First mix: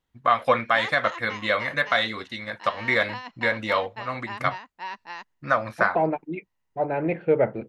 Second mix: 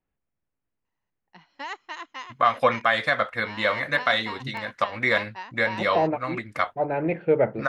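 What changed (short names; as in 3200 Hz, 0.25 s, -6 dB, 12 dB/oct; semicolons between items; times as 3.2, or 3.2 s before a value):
first voice: entry +2.15 s; background: entry +0.85 s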